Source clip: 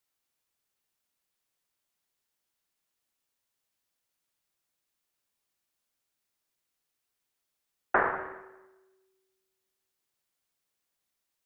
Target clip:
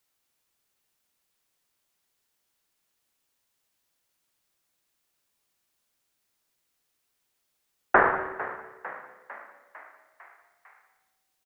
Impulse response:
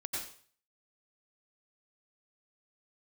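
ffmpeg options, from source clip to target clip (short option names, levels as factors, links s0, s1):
-filter_complex "[0:a]asplit=7[s0][s1][s2][s3][s4][s5][s6];[s1]adelay=451,afreqshift=64,volume=0.178[s7];[s2]adelay=902,afreqshift=128,volume=0.107[s8];[s3]adelay=1353,afreqshift=192,volume=0.0638[s9];[s4]adelay=1804,afreqshift=256,volume=0.0385[s10];[s5]adelay=2255,afreqshift=320,volume=0.0232[s11];[s6]adelay=2706,afreqshift=384,volume=0.0138[s12];[s0][s7][s8][s9][s10][s11][s12]amix=inputs=7:normalize=0,volume=2"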